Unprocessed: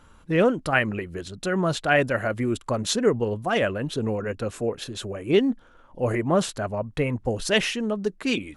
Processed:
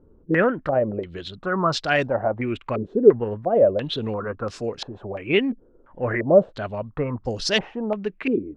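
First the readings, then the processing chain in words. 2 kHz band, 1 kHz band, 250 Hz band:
-1.0 dB, +1.5 dB, 0.0 dB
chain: step-sequenced low-pass 2.9 Hz 400–5100 Hz; trim -1.5 dB

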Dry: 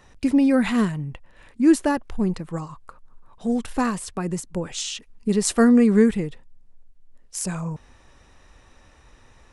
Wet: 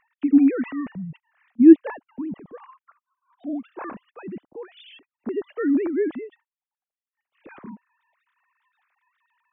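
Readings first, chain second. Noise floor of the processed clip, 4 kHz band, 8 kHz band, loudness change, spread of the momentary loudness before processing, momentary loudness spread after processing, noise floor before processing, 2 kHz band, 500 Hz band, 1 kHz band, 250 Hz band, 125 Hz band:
under -85 dBFS, under -15 dB, under -40 dB, +1.5 dB, 16 LU, 24 LU, -54 dBFS, -8.0 dB, -2.0 dB, -10.5 dB, -0.5 dB, -14.0 dB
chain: formants replaced by sine waves; bass shelf 250 Hz +7.5 dB; trim -4 dB

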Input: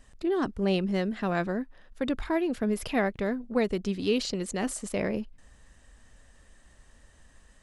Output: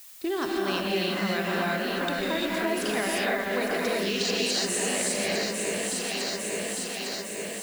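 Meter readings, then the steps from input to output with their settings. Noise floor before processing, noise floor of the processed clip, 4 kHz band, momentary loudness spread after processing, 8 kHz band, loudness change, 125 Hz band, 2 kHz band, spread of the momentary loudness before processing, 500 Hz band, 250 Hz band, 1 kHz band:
-59 dBFS, -35 dBFS, +11.0 dB, 5 LU, +13.0 dB, +2.0 dB, -2.0 dB, +8.5 dB, 5 LU, +2.0 dB, -1.5 dB, +4.5 dB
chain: tilt EQ +3.5 dB/octave; gated-style reverb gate 380 ms rising, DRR -5.5 dB; gate -42 dBFS, range -14 dB; low-pass 8.2 kHz 12 dB/octave; echo whose repeats swap between lows and highs 427 ms, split 2.4 kHz, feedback 76%, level -5.5 dB; compression 3:1, threshold -32 dBFS, peak gain reduction 11 dB; added noise blue -53 dBFS; trim +5 dB

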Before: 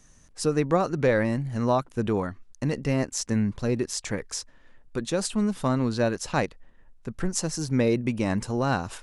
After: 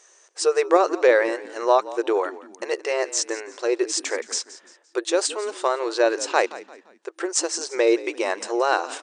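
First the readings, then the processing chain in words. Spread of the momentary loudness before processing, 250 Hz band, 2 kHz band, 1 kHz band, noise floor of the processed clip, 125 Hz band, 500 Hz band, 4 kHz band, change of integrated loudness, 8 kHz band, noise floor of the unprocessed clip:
10 LU, -4.0 dB, +6.5 dB, +6.5 dB, -57 dBFS, under -40 dB, +6.5 dB, +6.5 dB, +4.0 dB, +6.0 dB, -56 dBFS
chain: FFT band-pass 330–9200 Hz; frequency-shifting echo 172 ms, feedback 37%, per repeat -46 Hz, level -17 dB; trim +6.5 dB

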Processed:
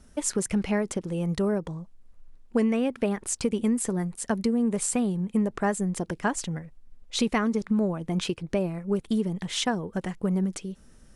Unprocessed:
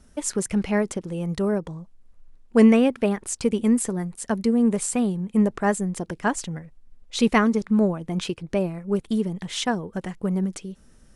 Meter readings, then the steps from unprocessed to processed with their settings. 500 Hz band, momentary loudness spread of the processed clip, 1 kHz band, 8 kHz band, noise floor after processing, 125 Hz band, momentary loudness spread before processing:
-4.5 dB, 6 LU, -4.0 dB, -1.0 dB, -54 dBFS, -2.0 dB, 11 LU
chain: compression 6:1, threshold -21 dBFS, peak gain reduction 10.5 dB

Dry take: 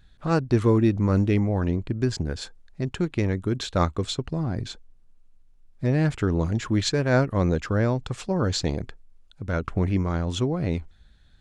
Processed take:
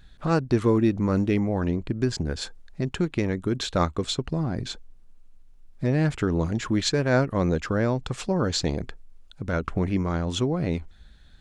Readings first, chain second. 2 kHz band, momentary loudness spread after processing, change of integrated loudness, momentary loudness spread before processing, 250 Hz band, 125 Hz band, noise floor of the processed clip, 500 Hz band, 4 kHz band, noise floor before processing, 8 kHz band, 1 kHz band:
+0.5 dB, 10 LU, -0.5 dB, 11 LU, 0.0 dB, -2.5 dB, -50 dBFS, 0.0 dB, +1.5 dB, -55 dBFS, +1.5 dB, 0.0 dB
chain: in parallel at +1.5 dB: compression, threshold -32 dBFS, peak gain reduction 16 dB; on the sum: peaking EQ 100 Hz -6 dB 0.49 oct; trim -2 dB

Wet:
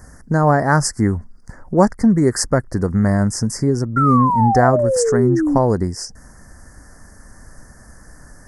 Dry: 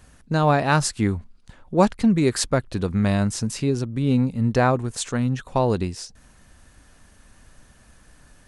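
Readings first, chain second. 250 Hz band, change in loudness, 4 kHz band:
+5.0 dB, +5.5 dB, +1.0 dB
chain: elliptic band-stop 1.9–5 kHz, stop band 40 dB; in parallel at +1 dB: compression, threshold -32 dBFS, peak gain reduction 19 dB; on the sum: painted sound fall, 3.96–5.58 s, 270–1400 Hz -20 dBFS; trim +3 dB

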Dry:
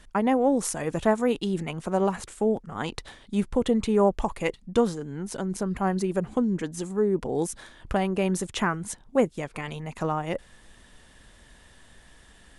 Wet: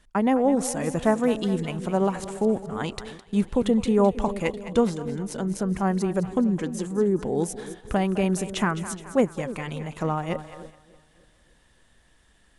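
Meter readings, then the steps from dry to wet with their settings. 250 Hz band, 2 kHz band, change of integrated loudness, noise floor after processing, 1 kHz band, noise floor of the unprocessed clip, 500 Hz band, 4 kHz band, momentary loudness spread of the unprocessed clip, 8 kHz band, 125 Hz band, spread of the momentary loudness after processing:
+2.5 dB, +0.5 dB, +1.5 dB, -60 dBFS, +0.5 dB, -54 dBFS, +1.0 dB, +0.5 dB, 11 LU, +0.5 dB, +3.0 dB, 10 LU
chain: two-band feedback delay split 530 Hz, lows 292 ms, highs 210 ms, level -12.5 dB; dynamic bell 180 Hz, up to +3 dB, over -36 dBFS, Q 0.95; gate -41 dBFS, range -8 dB

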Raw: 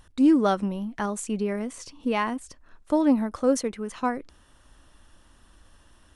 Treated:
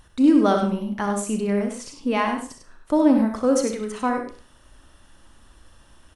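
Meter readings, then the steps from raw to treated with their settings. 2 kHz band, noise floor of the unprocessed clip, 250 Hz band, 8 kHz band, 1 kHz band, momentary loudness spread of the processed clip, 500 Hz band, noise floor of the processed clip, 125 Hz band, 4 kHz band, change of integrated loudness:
+3.5 dB, -57 dBFS, +4.0 dB, +3.5 dB, +3.5 dB, 12 LU, +4.0 dB, -54 dBFS, no reading, +3.5 dB, +4.0 dB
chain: loudspeakers at several distances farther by 22 m -9 dB, 34 m -7 dB; Schroeder reverb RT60 0.4 s, combs from 29 ms, DRR 9 dB; trim +2 dB

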